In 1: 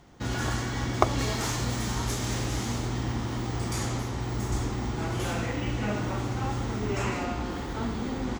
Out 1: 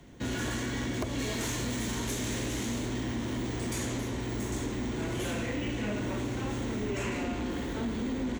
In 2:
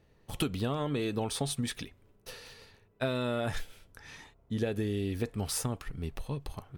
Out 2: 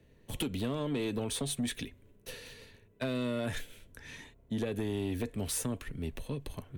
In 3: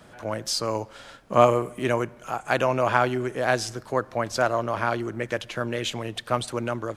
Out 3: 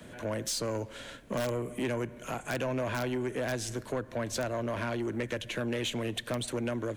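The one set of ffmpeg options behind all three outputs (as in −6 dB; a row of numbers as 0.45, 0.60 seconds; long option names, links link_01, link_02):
-filter_complex "[0:a]equalizer=frequency=250:width_type=o:width=0.33:gain=4,equalizer=frequency=800:width_type=o:width=0.33:gain=-10,equalizer=frequency=1250:width_type=o:width=0.33:gain=-10,equalizer=frequency=5000:width_type=o:width=0.33:gain=-8,asplit=2[link_01][link_02];[link_02]aeval=exprs='(mod(3.76*val(0)+1,2)-1)/3.76':channel_layout=same,volume=-3dB[link_03];[link_01][link_03]amix=inputs=2:normalize=0,acrossover=split=93|200[link_04][link_05][link_06];[link_04]acompressor=threshold=-37dB:ratio=4[link_07];[link_05]acompressor=threshold=-41dB:ratio=4[link_08];[link_06]acompressor=threshold=-26dB:ratio=4[link_09];[link_07][link_08][link_09]amix=inputs=3:normalize=0,asoftclip=type=tanh:threshold=-23.5dB,volume=-2dB"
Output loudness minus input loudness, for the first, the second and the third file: −3.0, −2.0, −8.0 LU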